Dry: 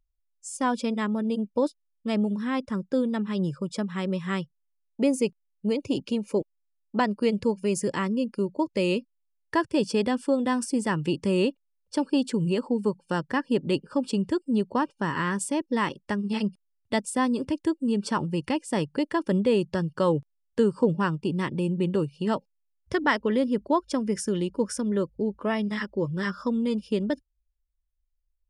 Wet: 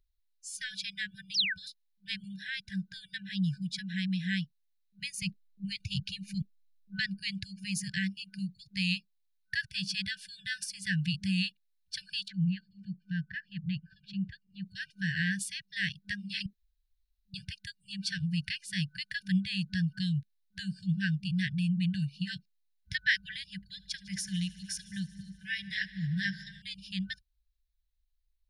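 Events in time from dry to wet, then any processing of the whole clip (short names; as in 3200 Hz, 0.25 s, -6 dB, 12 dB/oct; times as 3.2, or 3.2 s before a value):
1.34–1.7 painted sound fall 430–6100 Hz -32 dBFS
5.22–7.19 low shelf 230 Hz +10.5 dB
12.28–14.66 tape spacing loss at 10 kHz 37 dB
16.46–17.34 room tone
23.55–26.62 multi-head echo 76 ms, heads all three, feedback 56%, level -22.5 dB
whole clip: FFT band-reject 200–1500 Hz; thirty-one-band EQ 200 Hz -3 dB, 400 Hz +12 dB, 630 Hz +6 dB, 4000 Hz +10 dB, 8000 Hz -10 dB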